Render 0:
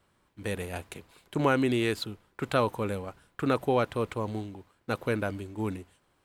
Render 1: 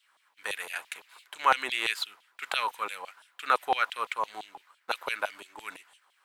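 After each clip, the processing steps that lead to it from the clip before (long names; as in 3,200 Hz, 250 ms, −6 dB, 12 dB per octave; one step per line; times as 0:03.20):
auto-filter high-pass saw down 5.9 Hz 760–3,400 Hz
level +2.5 dB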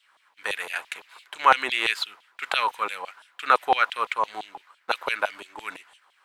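high-shelf EQ 7,300 Hz −9.5 dB
level +6 dB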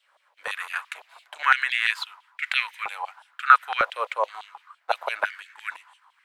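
high-pass on a step sequencer 2.1 Hz 560–2,000 Hz
level −4.5 dB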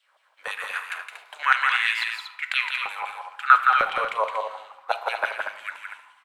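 loudspeakers that aren't time-aligned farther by 57 metres −5 dB, 81 metres −8 dB
on a send at −9 dB: convolution reverb RT60 1.0 s, pre-delay 4 ms
on the sum: level −1 dB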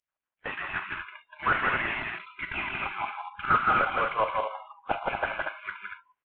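variable-slope delta modulation 16 kbit/s
noise reduction from a noise print of the clip's start 30 dB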